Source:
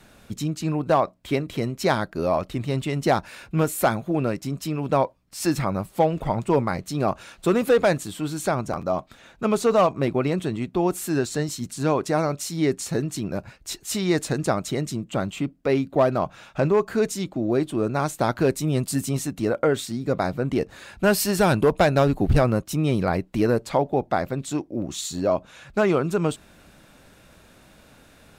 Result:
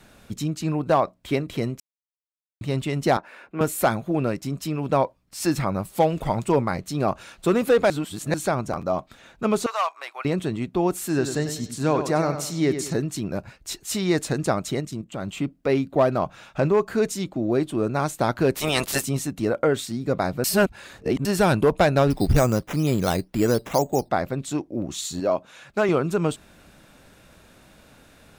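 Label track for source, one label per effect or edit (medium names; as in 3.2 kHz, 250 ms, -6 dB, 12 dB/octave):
1.800000	2.610000	mute
3.170000	3.610000	three-band isolator lows -23 dB, under 250 Hz, highs -16 dB, over 2.4 kHz
5.850000	6.520000	treble shelf 3.4 kHz +7.5 dB
7.900000	8.340000	reverse
9.660000	10.250000	high-pass 880 Hz 24 dB/octave
10.990000	12.930000	bucket-brigade echo 97 ms, stages 4096, feedback 35%, level -9 dB
14.800000	15.280000	level held to a coarse grid steps of 10 dB
18.540000	19.020000	spectral peaks clipped ceiling under each frame's peak by 27 dB
20.440000	21.250000	reverse
22.100000	24.090000	decimation with a swept rate 8×, swing 60% 2.1 Hz
25.200000	25.890000	high-pass 240 Hz 6 dB/octave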